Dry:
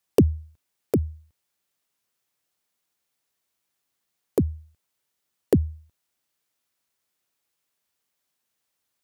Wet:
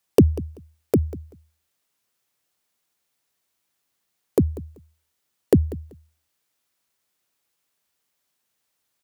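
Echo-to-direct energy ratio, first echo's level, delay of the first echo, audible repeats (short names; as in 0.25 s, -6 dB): -18.0 dB, -18.0 dB, 0.192 s, 2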